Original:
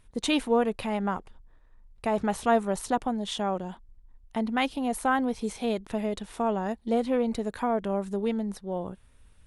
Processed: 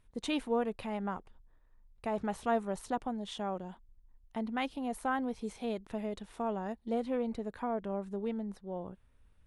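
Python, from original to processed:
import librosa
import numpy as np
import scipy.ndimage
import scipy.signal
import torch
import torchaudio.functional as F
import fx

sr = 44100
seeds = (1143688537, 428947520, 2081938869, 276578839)

y = fx.high_shelf(x, sr, hz=3800.0, db=fx.steps((0.0, -5.0), (7.3, -11.0)))
y = F.gain(torch.from_numpy(y), -7.5).numpy()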